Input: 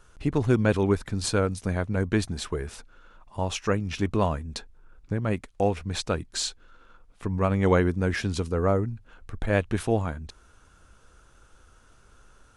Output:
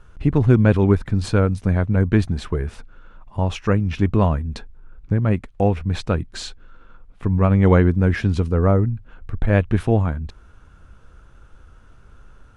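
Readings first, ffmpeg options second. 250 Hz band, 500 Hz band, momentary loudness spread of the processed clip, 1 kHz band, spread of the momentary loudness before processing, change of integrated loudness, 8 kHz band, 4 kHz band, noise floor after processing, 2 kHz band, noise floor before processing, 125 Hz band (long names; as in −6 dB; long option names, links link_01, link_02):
+7.5 dB, +4.0 dB, 16 LU, +3.5 dB, 13 LU, +7.5 dB, can't be measured, −2.0 dB, −48 dBFS, +3.0 dB, −57 dBFS, +10.0 dB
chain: -af "bass=frequency=250:gain=7,treble=frequency=4000:gain=-11,volume=3.5dB"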